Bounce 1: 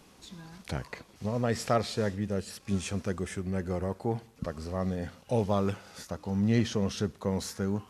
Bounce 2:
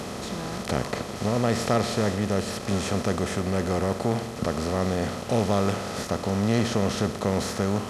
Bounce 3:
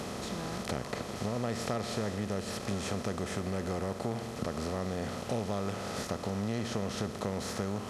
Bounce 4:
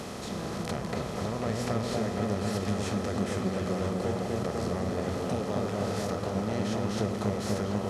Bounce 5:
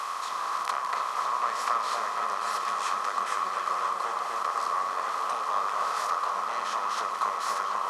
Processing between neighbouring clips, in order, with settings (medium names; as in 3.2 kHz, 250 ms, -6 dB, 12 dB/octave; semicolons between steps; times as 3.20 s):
spectral levelling over time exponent 0.4
compression 3:1, threshold -26 dBFS, peak gain reduction 7.5 dB; trim -4.5 dB
delay with an opening low-pass 247 ms, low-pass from 750 Hz, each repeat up 1 oct, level 0 dB
resonant high-pass 1.1 kHz, resonance Q 9; trim +1.5 dB